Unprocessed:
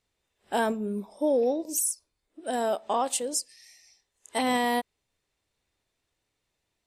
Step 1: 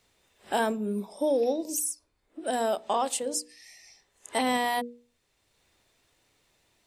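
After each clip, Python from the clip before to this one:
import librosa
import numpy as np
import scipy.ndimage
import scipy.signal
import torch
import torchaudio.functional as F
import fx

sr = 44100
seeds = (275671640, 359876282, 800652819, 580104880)

y = fx.hum_notches(x, sr, base_hz=60, count=8)
y = fx.band_squash(y, sr, depth_pct=40)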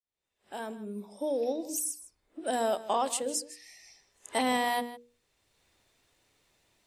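y = fx.fade_in_head(x, sr, length_s=2.13)
y = y + 10.0 ** (-16.0 / 20.0) * np.pad(y, (int(156 * sr / 1000.0), 0))[:len(y)]
y = y * librosa.db_to_amplitude(-1.5)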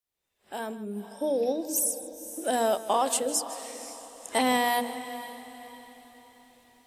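y = fx.peak_eq(x, sr, hz=13000.0, db=6.0, octaves=0.59)
y = fx.echo_diffused(y, sr, ms=511, feedback_pct=43, wet_db=-13.5)
y = y * librosa.db_to_amplitude(3.5)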